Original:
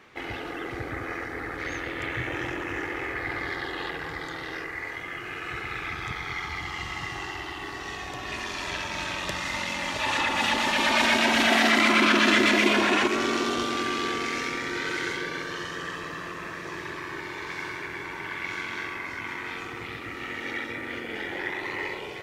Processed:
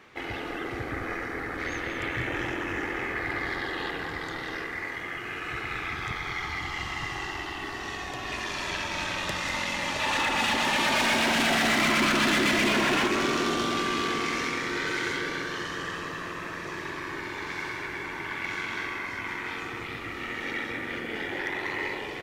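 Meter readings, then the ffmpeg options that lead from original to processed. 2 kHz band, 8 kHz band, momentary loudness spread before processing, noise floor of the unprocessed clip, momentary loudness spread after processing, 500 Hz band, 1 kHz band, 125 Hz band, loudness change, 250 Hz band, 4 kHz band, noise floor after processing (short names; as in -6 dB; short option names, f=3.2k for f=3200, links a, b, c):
-1.5 dB, +0.5 dB, 15 LU, -37 dBFS, 12 LU, -1.5 dB, -1.0 dB, +1.5 dB, -1.5 dB, -1.5 dB, -1.5 dB, -36 dBFS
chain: -filter_complex "[0:a]asoftclip=type=hard:threshold=-21.5dB,asplit=2[a][b];[b]asplit=4[c][d][e][f];[c]adelay=194,afreqshift=-67,volume=-9dB[g];[d]adelay=388,afreqshift=-134,volume=-18.6dB[h];[e]adelay=582,afreqshift=-201,volume=-28.3dB[i];[f]adelay=776,afreqshift=-268,volume=-37.9dB[j];[g][h][i][j]amix=inputs=4:normalize=0[k];[a][k]amix=inputs=2:normalize=0"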